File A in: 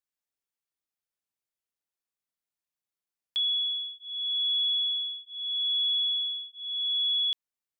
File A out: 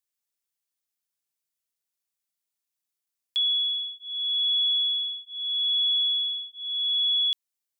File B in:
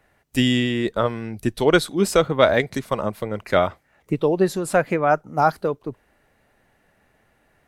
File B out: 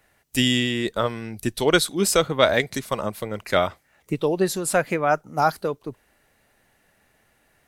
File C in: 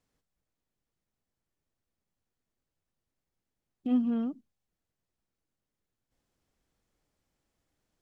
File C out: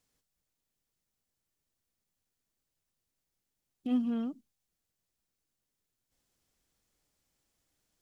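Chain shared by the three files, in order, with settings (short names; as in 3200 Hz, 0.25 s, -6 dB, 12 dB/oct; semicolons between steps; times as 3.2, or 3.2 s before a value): high shelf 2900 Hz +10.5 dB; gain -3 dB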